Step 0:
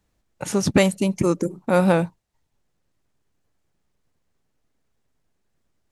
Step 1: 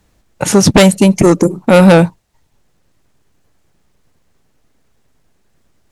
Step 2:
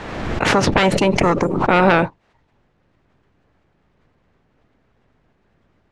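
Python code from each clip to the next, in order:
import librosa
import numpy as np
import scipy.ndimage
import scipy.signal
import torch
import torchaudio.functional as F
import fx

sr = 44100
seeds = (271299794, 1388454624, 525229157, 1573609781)

y1 = fx.fold_sine(x, sr, drive_db=7, ceiling_db=-5.0)
y1 = y1 * 10.0 ** (3.5 / 20.0)
y2 = fx.spec_clip(y1, sr, under_db=17)
y2 = scipy.signal.sosfilt(scipy.signal.butter(2, 2400.0, 'lowpass', fs=sr, output='sos'), y2)
y2 = fx.pre_swell(y2, sr, db_per_s=36.0)
y2 = y2 * 10.0 ** (-7.5 / 20.0)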